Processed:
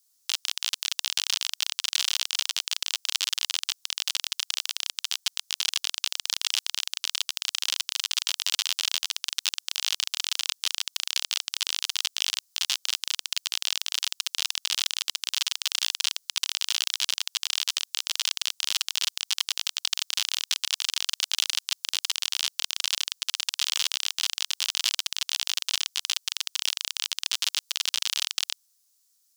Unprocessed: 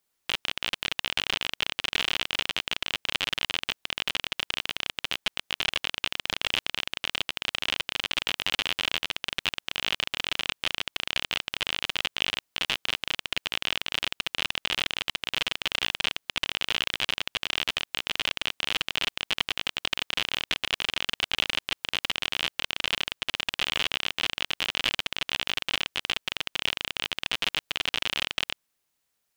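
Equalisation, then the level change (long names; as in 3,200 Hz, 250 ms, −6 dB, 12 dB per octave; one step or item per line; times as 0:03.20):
high-pass filter 890 Hz 24 dB per octave
high shelf with overshoot 3,600 Hz +14 dB, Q 1.5
−4.0 dB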